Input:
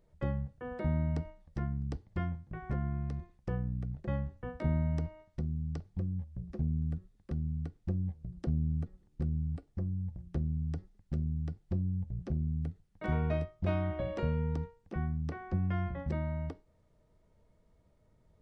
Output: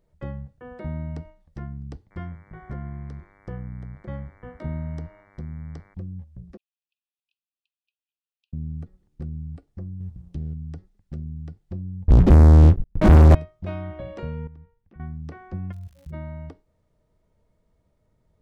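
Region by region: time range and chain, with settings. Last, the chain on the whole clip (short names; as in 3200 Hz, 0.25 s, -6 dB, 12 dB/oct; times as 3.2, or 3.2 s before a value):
2.1–5.93 notch 2600 Hz, Q 7.3 + buzz 100 Hz, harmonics 23, -58 dBFS -1 dB/oct
6.57–8.53 brick-wall FIR high-pass 2400 Hz + air absorption 450 m
10–10.54 band shelf 890 Hz -14.5 dB 2.6 oct + sample leveller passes 1
12.08–13.35 tilt -4.5 dB/oct + sample leveller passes 5
14.47–15 LPF 2100 Hz + compressor 2:1, threshold -46 dBFS + bell 580 Hz -10.5 dB 3 oct
15.71–16.12 spectral contrast raised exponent 2.6 + level quantiser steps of 18 dB + crackle 150/s -45 dBFS
whole clip: dry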